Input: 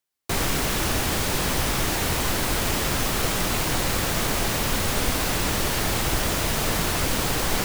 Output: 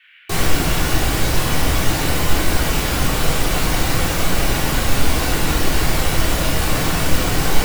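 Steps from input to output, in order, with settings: reverb removal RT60 0.87 s; band noise 1.5–3.1 kHz -55 dBFS; simulated room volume 620 m³, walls mixed, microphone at 3.5 m; trim -1.5 dB

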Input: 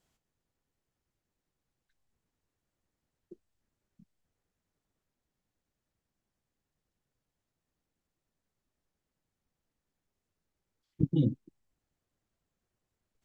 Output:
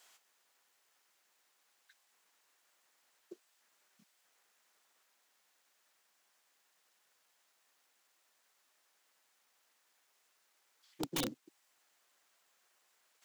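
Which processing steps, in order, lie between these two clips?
in parallel at -2.5 dB: compression 6:1, threshold -39 dBFS, peak gain reduction 17 dB; on the sum: high-pass 940 Hz 12 dB/octave; integer overflow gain 40 dB; trim +11.5 dB

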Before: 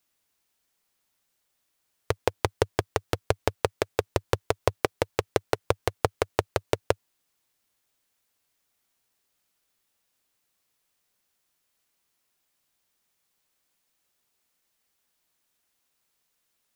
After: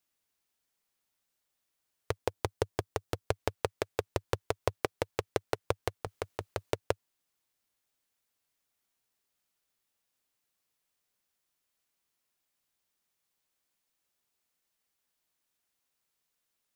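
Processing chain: 2.18–3.28 s: peaking EQ 2.1 kHz -3 dB 2.1 oct; 6.03–6.71 s: compressor with a negative ratio -27 dBFS, ratio -1; trim -6.5 dB

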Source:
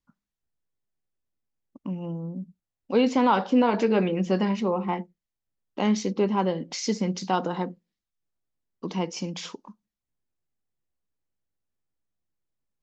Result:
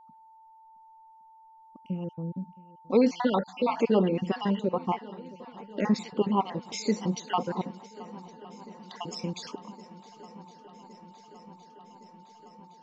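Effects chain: random holes in the spectrogram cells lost 52%; whistle 890 Hz -52 dBFS; shuffle delay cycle 1114 ms, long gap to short 1.5:1, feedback 72%, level -21 dB

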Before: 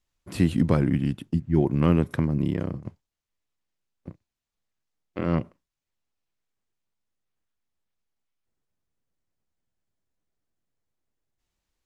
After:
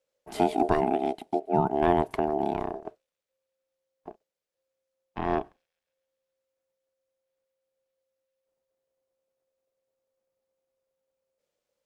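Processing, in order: feedback echo behind a high-pass 135 ms, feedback 63%, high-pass 5.2 kHz, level -21 dB; ring modulator 530 Hz

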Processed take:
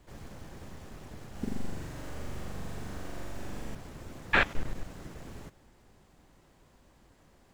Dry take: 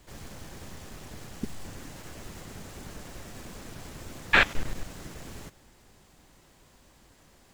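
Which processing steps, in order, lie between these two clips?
treble shelf 2.3 kHz -8.5 dB; 1.31–3.75 s: flutter echo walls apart 7.2 m, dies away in 1.4 s; trim -1.5 dB

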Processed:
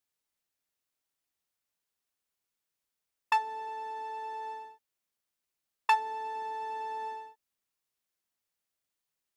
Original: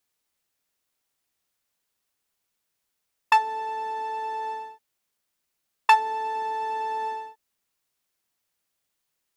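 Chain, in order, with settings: 3.68–4.65 s: high-pass 180 Hz 12 dB/octave; trim -8 dB

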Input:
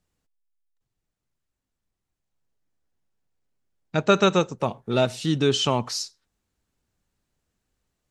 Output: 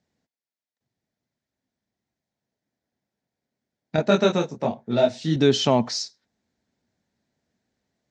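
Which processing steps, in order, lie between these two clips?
cabinet simulation 110–6300 Hz, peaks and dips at 230 Hz +7 dB, 650 Hz +5 dB, 1.2 kHz -8 dB, 1.9 kHz +3 dB, 2.8 kHz -6 dB; 3.96–5.36 s: detune thickener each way 43 cents; trim +2.5 dB

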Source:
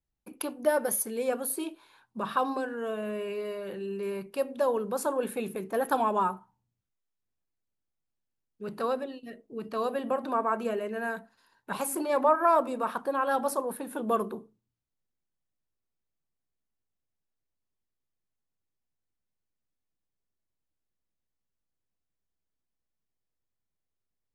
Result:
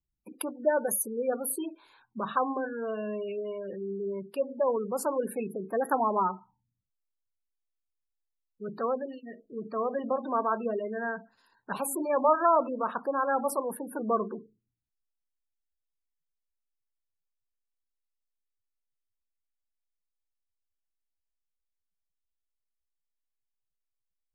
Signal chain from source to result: spectral gate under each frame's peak -20 dB strong

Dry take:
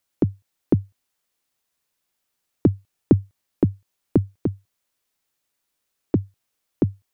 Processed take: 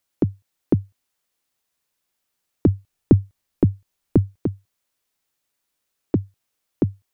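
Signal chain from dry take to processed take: 2.68–4.38 s: bass shelf 76 Hz +11 dB

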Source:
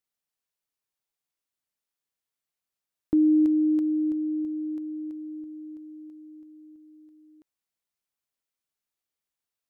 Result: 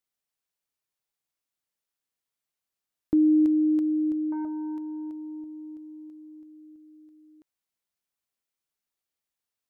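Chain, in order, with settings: 4.32–6.60 s: transformer saturation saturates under 360 Hz

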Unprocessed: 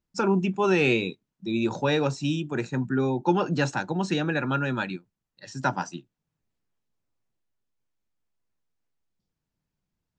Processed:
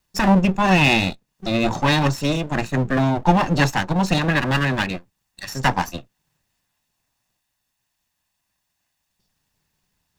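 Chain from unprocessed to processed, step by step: comb filter that takes the minimum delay 1.1 ms; tape noise reduction on one side only encoder only; trim +8.5 dB

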